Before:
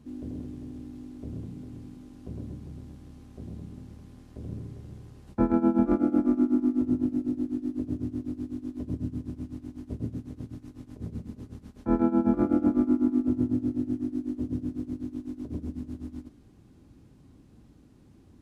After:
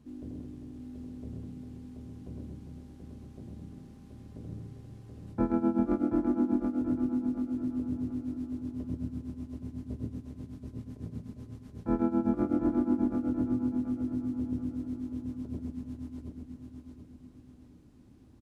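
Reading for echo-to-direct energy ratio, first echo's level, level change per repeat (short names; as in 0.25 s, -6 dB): -4.5 dB, -5.0 dB, -8.0 dB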